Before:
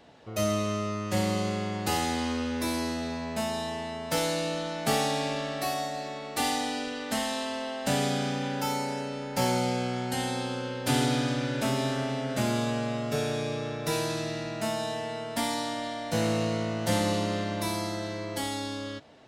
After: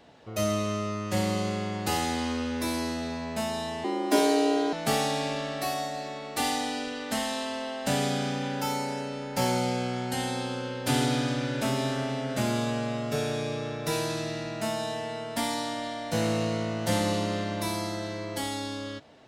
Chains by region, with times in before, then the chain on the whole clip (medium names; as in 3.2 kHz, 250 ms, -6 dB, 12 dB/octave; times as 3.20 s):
3.84–4.73 s: frequency shift +120 Hz + peaking EQ 320 Hz +13 dB 1.3 oct
whole clip: none